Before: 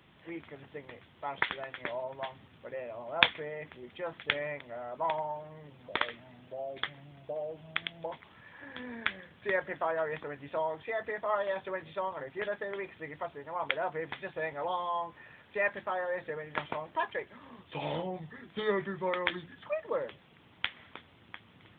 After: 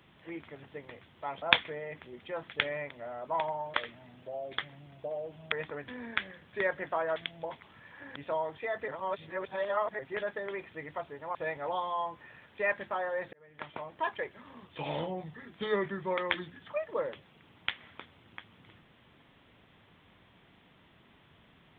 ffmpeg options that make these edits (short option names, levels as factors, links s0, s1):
-filter_complex "[0:a]asplit=11[s0][s1][s2][s3][s4][s5][s6][s7][s8][s9][s10];[s0]atrim=end=1.422[s11];[s1]atrim=start=3.118:end=5.442[s12];[s2]atrim=start=5.988:end=7.772[s13];[s3]atrim=start=10.048:end=10.412[s14];[s4]atrim=start=8.768:end=10.052[s15];[s5]atrim=start=7.768:end=8.772[s16];[s6]atrim=start=10.408:end=11.132[s17];[s7]atrim=start=11.128:end=12.242,asetpts=PTS-STARTPTS,areverse[s18];[s8]atrim=start=12.238:end=13.602[s19];[s9]atrim=start=14.308:end=16.29,asetpts=PTS-STARTPTS,afade=t=out:st=1.978:d=0.004:c=hsin[s20];[s10]atrim=start=16.29,asetpts=PTS-STARTPTS,afade=t=in:d=0.76[s21];[s11][s12]acrossfade=d=0.004:c1=hsin:c2=hsin[s22];[s22][s13]acrossfade=d=0.004:c1=hsin:c2=hsin[s23];[s23][s14]acrossfade=d=0.004:c1=hsin:c2=hsin[s24];[s24][s15]acrossfade=d=0.004:c1=hsin:c2=hsin[s25];[s25][s16]acrossfade=d=0.004:c1=hsin:c2=hsin[s26];[s26][s17]acrossfade=d=0.004:c1=hsin:c2=hsin[s27];[s27][s18]acrossfade=d=0.004:c1=hsin:c2=hsin[s28];[s28][s19]acrossfade=d=0.004:c1=hsin:c2=hsin[s29];[s20][s21]concat=n=2:v=0:a=1[s30];[s29][s30]acrossfade=d=0.004:c1=hsin:c2=hsin"